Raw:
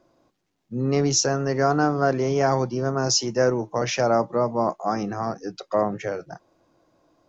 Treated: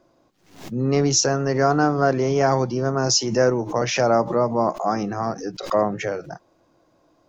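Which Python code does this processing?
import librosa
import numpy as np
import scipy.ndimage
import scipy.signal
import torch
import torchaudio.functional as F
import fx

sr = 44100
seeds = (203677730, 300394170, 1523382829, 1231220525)

y = fx.pre_swell(x, sr, db_per_s=110.0)
y = y * 10.0 ** (2.0 / 20.0)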